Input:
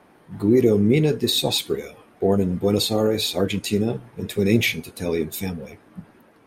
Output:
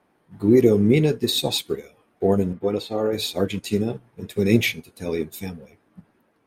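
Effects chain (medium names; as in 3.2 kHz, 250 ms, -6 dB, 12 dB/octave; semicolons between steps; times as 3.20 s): 2.53–3.13 s: tone controls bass -8 dB, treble -14 dB; upward expansion 1.5:1, over -40 dBFS; trim +2 dB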